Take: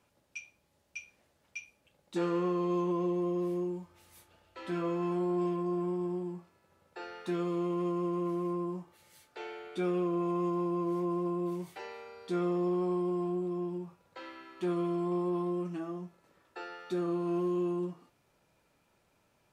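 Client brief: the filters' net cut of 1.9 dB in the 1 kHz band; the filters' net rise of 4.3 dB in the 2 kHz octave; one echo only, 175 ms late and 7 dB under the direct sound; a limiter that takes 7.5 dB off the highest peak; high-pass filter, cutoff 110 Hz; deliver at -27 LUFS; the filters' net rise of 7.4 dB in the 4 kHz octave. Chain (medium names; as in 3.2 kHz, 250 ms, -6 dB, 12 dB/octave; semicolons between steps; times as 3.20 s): high-pass 110 Hz; peaking EQ 1 kHz -3.5 dB; peaking EQ 2 kHz +3.5 dB; peaking EQ 4 kHz +8.5 dB; peak limiter -29 dBFS; delay 175 ms -7 dB; trim +9.5 dB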